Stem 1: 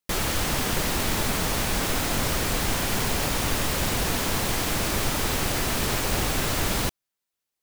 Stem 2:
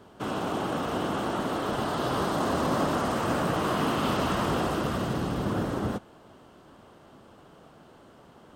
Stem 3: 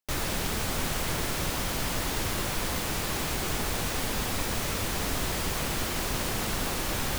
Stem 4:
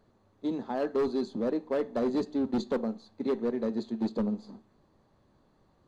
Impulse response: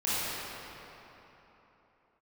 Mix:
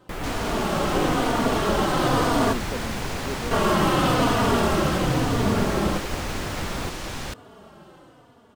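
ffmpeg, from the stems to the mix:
-filter_complex "[0:a]acrossover=split=2600[link_01][link_02];[link_02]acompressor=threshold=-41dB:ratio=4:attack=1:release=60[link_03];[link_01][link_03]amix=inputs=2:normalize=0,volume=-4.5dB[link_04];[1:a]dynaudnorm=framelen=110:gausssize=11:maxgain=8dB,asplit=2[link_05][link_06];[link_06]adelay=3.4,afreqshift=-1[link_07];[link_05][link_07]amix=inputs=2:normalize=1,volume=1dB,asplit=3[link_08][link_09][link_10];[link_08]atrim=end=2.53,asetpts=PTS-STARTPTS,afade=type=out:start_time=2.526:duration=0.004:curve=hsin[link_11];[link_09]atrim=start=2.53:end=3.51,asetpts=PTS-STARTPTS,volume=0[link_12];[link_10]atrim=start=3.51,asetpts=PTS-STARTPTS,afade=type=in:duration=0.004:curve=hsin[link_13];[link_11][link_12][link_13]concat=n=3:v=0:a=1[link_14];[2:a]acrossover=split=8500[link_15][link_16];[link_16]acompressor=threshold=-50dB:ratio=4:attack=1:release=60[link_17];[link_15][link_17]amix=inputs=2:normalize=0,adelay=150,volume=-2dB[link_18];[3:a]volume=-5dB[link_19];[link_04][link_14][link_18][link_19]amix=inputs=4:normalize=0"

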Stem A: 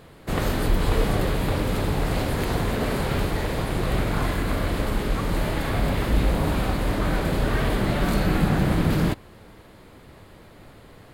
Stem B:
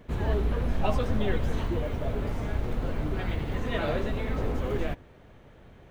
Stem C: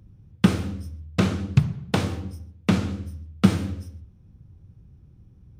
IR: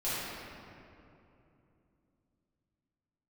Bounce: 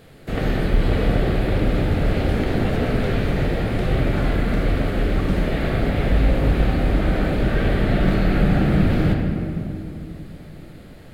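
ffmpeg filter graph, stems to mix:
-filter_complex "[0:a]acrossover=split=3800[link_01][link_02];[link_02]acompressor=threshold=-53dB:ratio=4:attack=1:release=60[link_03];[link_01][link_03]amix=inputs=2:normalize=0,volume=-1.5dB,asplit=2[link_04][link_05];[link_05]volume=-6.5dB[link_06];[1:a]adelay=1800,volume=-3.5dB[link_07];[2:a]adelay=1850,volume=-15dB[link_08];[3:a]atrim=start_sample=2205[link_09];[link_06][link_09]afir=irnorm=-1:irlink=0[link_10];[link_04][link_07][link_08][link_10]amix=inputs=4:normalize=0,equalizer=frequency=1000:width_type=o:width=0.41:gain=-11.5"

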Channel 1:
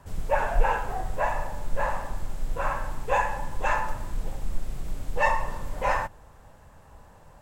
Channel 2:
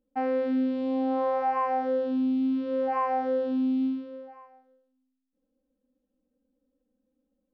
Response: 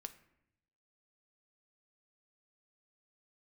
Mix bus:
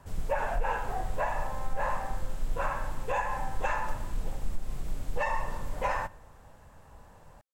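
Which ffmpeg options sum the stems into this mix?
-filter_complex "[0:a]volume=-4dB,asplit=2[link_01][link_02];[link_02]volume=-6.5dB[link_03];[1:a]highpass=frequency=820:width=0.5412,highpass=frequency=820:width=1.3066,adelay=300,volume=-9dB[link_04];[2:a]atrim=start_sample=2205[link_05];[link_03][link_05]afir=irnorm=-1:irlink=0[link_06];[link_01][link_04][link_06]amix=inputs=3:normalize=0,alimiter=limit=-19dB:level=0:latency=1:release=166"

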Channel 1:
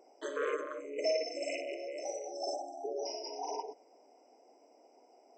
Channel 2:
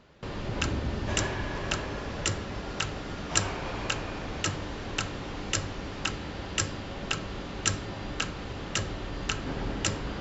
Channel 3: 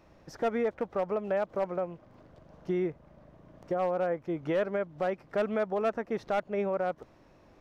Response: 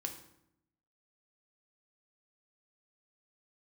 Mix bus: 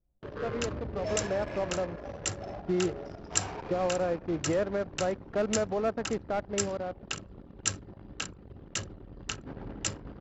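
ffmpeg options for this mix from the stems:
-filter_complex "[0:a]lowpass=frequency=3200:poles=1,volume=-4dB[link_01];[1:a]highpass=47,highshelf=frequency=5500:gain=9.5,volume=-7.5dB,asplit=3[link_02][link_03][link_04];[link_03]volume=-19dB[link_05];[link_04]volume=-16.5dB[link_06];[2:a]lowshelf=frequency=480:gain=5,dynaudnorm=framelen=110:gausssize=21:maxgain=8.5dB,volume=-11.5dB,asplit=2[link_07][link_08];[link_08]volume=-18.5dB[link_09];[3:a]atrim=start_sample=2205[link_10];[link_05][link_09]amix=inputs=2:normalize=0[link_11];[link_11][link_10]afir=irnorm=-1:irlink=0[link_12];[link_06]aecho=0:1:579|1158|1737|2316|2895|3474:1|0.46|0.212|0.0973|0.0448|0.0206[link_13];[link_01][link_02][link_07][link_12][link_13]amix=inputs=5:normalize=0,adynamicequalizer=threshold=0.00251:dfrequency=3200:dqfactor=2:tfrequency=3200:tqfactor=2:attack=5:release=100:ratio=0.375:range=2:mode=cutabove:tftype=bell,anlmdn=0.631"

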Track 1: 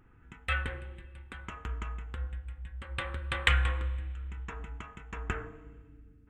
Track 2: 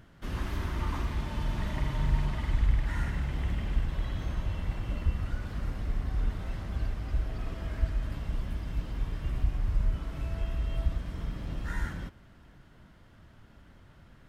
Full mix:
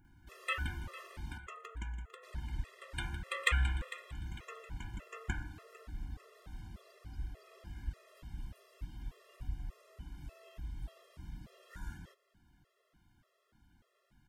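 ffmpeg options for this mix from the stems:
ffmpeg -i stem1.wav -i stem2.wav -filter_complex "[0:a]volume=-3dB,asplit=2[link_01][link_02];[link_02]volume=-15.5dB[link_03];[1:a]adelay=50,volume=-11.5dB,asplit=3[link_04][link_05][link_06];[link_04]atrim=end=1.38,asetpts=PTS-STARTPTS,afade=type=out:start_time=1.376:duration=0.004:curve=hsin[link_07];[link_05]atrim=start=1.38:end=2.23,asetpts=PTS-STARTPTS,volume=0[link_08];[link_06]atrim=start=2.23,asetpts=PTS-STARTPTS,afade=type=in:duration=0.004:curve=hsin[link_09];[link_07][link_08][link_09]concat=n=3:v=0:a=1[link_10];[link_03]aecho=0:1:451|902|1353|1804|2255:1|0.36|0.13|0.0467|0.0168[link_11];[link_01][link_10][link_11]amix=inputs=3:normalize=0,highshelf=frequency=5200:gain=9.5,afftfilt=real='re*gt(sin(2*PI*1.7*pts/sr)*(1-2*mod(floor(b*sr/1024/350),2)),0)':imag='im*gt(sin(2*PI*1.7*pts/sr)*(1-2*mod(floor(b*sr/1024/350),2)),0)':win_size=1024:overlap=0.75" out.wav

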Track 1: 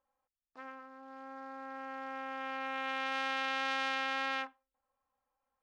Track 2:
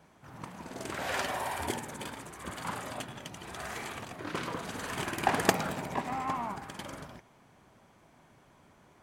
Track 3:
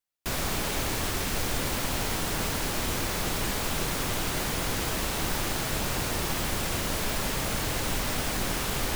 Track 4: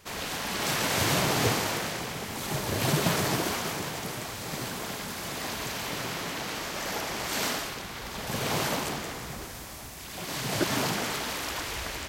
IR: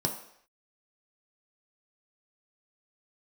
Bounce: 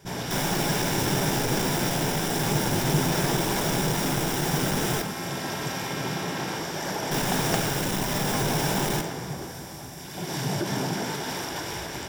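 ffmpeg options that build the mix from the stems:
-filter_complex "[0:a]adelay=2150,volume=-5.5dB[link_01];[1:a]adelay=2050,volume=-5.5dB[link_02];[2:a]aeval=exprs='val(0)+0.0112*(sin(2*PI*60*n/s)+sin(2*PI*2*60*n/s)/2+sin(2*PI*3*60*n/s)/3+sin(2*PI*4*60*n/s)/4+sin(2*PI*5*60*n/s)/5)':channel_layout=same,volume=31.5dB,asoftclip=hard,volume=-31.5dB,adelay=50,volume=2.5dB,asplit=3[link_03][link_04][link_05];[link_03]atrim=end=5.02,asetpts=PTS-STARTPTS,afade=type=out:start_time=5.016:duration=0.004:curve=hsin[link_06];[link_04]atrim=start=5.02:end=7.11,asetpts=PTS-STARTPTS,volume=0[link_07];[link_05]atrim=start=7.11,asetpts=PTS-STARTPTS,afade=type=in:duration=0.004:curve=hsin[link_08];[link_06][link_07][link_08]concat=n=3:v=0:a=1,asplit=2[link_09][link_10];[link_10]volume=-8.5dB[link_11];[3:a]alimiter=limit=-22.5dB:level=0:latency=1:release=74,volume=-5dB,asplit=2[link_12][link_13];[link_13]volume=-3dB[link_14];[4:a]atrim=start_sample=2205[link_15];[link_11][link_14]amix=inputs=2:normalize=0[link_16];[link_16][link_15]afir=irnorm=-1:irlink=0[link_17];[link_01][link_02][link_09][link_12][link_17]amix=inputs=5:normalize=0"

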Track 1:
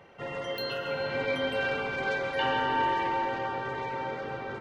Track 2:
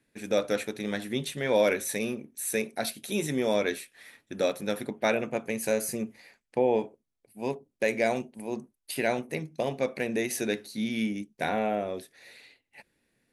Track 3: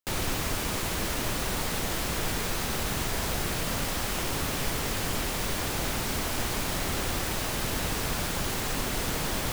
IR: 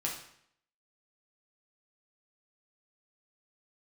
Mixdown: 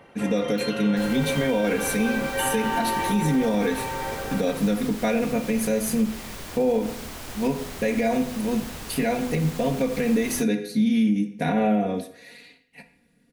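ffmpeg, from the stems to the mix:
-filter_complex "[0:a]volume=3dB[link_01];[1:a]equalizer=frequency=130:width=0.64:gain=15,aecho=1:1:4.2:0.97,bandreject=frequency=82.71:width_type=h:width=4,bandreject=frequency=165.42:width_type=h:width=4,bandreject=frequency=248.13:width_type=h:width=4,bandreject=frequency=330.84:width_type=h:width=4,bandreject=frequency=413.55:width_type=h:width=4,bandreject=frequency=496.26:width_type=h:width=4,bandreject=frequency=578.97:width_type=h:width=4,bandreject=frequency=661.68:width_type=h:width=4,bandreject=frequency=744.39:width_type=h:width=4,bandreject=frequency=827.1:width_type=h:width=4,bandreject=frequency=909.81:width_type=h:width=4,bandreject=frequency=992.52:width_type=h:width=4,bandreject=frequency=1075.23:width_type=h:width=4,bandreject=frequency=1157.94:width_type=h:width=4,bandreject=frequency=1240.65:width_type=h:width=4,bandreject=frequency=1323.36:width_type=h:width=4,bandreject=frequency=1406.07:width_type=h:width=4,bandreject=frequency=1488.78:width_type=h:width=4,bandreject=frequency=1571.49:width_type=h:width=4,bandreject=frequency=1654.2:width_type=h:width=4,bandreject=frequency=1736.91:width_type=h:width=4,bandreject=frequency=1819.62:width_type=h:width=4,bandreject=frequency=1902.33:width_type=h:width=4,bandreject=frequency=1985.04:width_type=h:width=4,bandreject=frequency=2067.75:width_type=h:width=4,bandreject=frequency=2150.46:width_type=h:width=4,bandreject=frequency=2233.17:width_type=h:width=4,bandreject=frequency=2315.88:width_type=h:width=4,bandreject=frequency=2398.59:width_type=h:width=4,bandreject=frequency=2481.3:width_type=h:width=4,bandreject=frequency=2564.01:width_type=h:width=4,bandreject=frequency=2646.72:width_type=h:width=4,bandreject=frequency=2729.43:width_type=h:width=4,volume=-1.5dB,asplit=2[link_02][link_03];[link_03]volume=-8.5dB[link_04];[2:a]adelay=900,volume=-8dB,asplit=2[link_05][link_06];[link_06]volume=-21.5dB[link_07];[3:a]atrim=start_sample=2205[link_08];[link_04][link_07]amix=inputs=2:normalize=0[link_09];[link_09][link_08]afir=irnorm=-1:irlink=0[link_10];[link_01][link_02][link_05][link_10]amix=inputs=4:normalize=0,alimiter=limit=-14dB:level=0:latency=1:release=107"

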